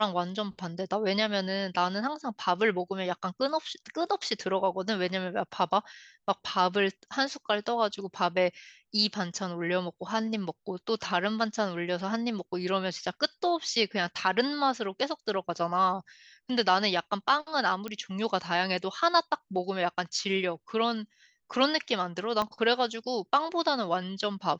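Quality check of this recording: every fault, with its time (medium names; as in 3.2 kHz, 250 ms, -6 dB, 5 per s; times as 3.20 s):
17.88 s: pop -21 dBFS
22.42 s: pop -16 dBFS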